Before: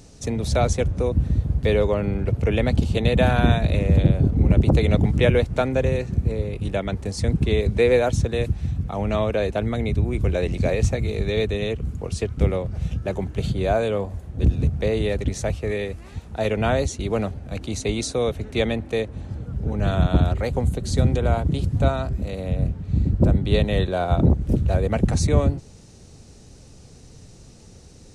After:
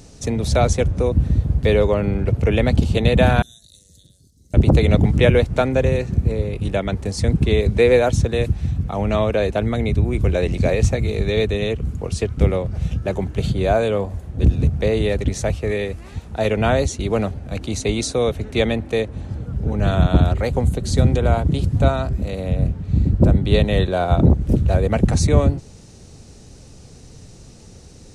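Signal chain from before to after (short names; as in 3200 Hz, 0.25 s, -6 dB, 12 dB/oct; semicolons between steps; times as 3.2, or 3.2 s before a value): 3.42–4.54 inverse Chebyshev high-pass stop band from 2600 Hz, stop band 40 dB; gain +3.5 dB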